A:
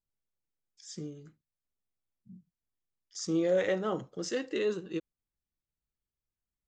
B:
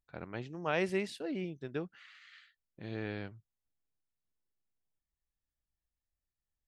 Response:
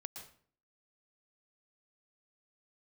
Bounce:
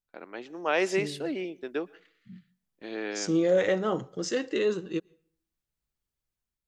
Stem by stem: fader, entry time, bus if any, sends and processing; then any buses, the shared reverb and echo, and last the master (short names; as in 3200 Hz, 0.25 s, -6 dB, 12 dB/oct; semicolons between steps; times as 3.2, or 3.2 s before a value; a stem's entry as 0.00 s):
-2.0 dB, 0.00 s, send -18.5 dB, dry
+0.5 dB, 0.00 s, send -15 dB, HPF 270 Hz 24 dB/oct; gate -53 dBFS, range -21 dB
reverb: on, RT60 0.50 s, pre-delay 0.109 s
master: AGC gain up to 5.5 dB